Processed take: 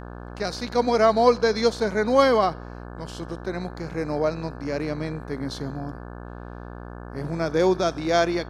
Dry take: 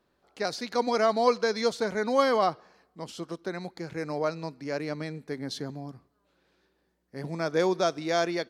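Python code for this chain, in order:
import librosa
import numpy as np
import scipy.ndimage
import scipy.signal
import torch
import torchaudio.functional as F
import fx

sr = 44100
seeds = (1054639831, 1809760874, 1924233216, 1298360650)

y = fx.hpss(x, sr, part='harmonic', gain_db=6)
y = fx.dmg_buzz(y, sr, base_hz=60.0, harmonics=29, level_db=-38.0, tilt_db=-4, odd_only=False)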